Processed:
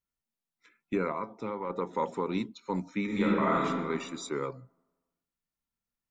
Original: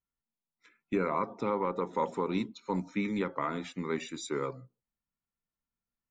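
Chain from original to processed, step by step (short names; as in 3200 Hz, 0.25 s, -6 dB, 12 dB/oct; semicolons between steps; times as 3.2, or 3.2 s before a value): 1.12–1.7 resonator 110 Hz, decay 0.18 s, harmonics all, mix 60%; 3.05–3.65 reverb throw, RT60 1.5 s, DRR -5.5 dB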